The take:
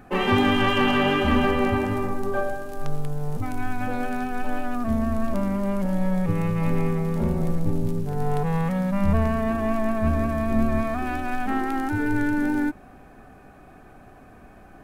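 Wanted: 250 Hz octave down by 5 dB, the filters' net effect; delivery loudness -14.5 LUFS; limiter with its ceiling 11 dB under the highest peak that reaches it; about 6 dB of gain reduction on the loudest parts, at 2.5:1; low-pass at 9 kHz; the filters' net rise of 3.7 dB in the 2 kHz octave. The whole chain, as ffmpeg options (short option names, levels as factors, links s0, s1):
-af "lowpass=9000,equalizer=f=250:t=o:g=-6.5,equalizer=f=2000:t=o:g=5,acompressor=threshold=0.0501:ratio=2.5,volume=10.6,alimiter=limit=0.596:level=0:latency=1"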